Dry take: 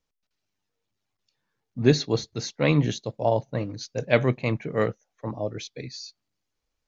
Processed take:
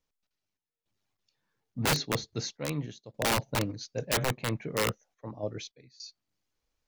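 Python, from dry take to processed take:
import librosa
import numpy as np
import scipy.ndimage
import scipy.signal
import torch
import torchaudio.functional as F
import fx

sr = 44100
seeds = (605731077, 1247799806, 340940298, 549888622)

y = fx.tremolo_random(x, sr, seeds[0], hz=3.5, depth_pct=90)
y = (np.mod(10.0 ** (20.0 / 20.0) * y + 1.0, 2.0) - 1.0) / 10.0 ** (20.0 / 20.0)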